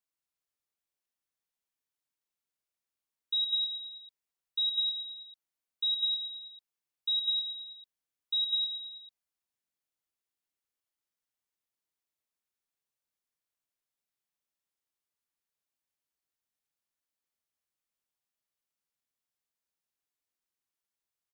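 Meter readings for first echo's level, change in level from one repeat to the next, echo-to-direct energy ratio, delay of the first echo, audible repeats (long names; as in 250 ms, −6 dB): −7.0 dB, −5.0 dB, −5.5 dB, 112 ms, 4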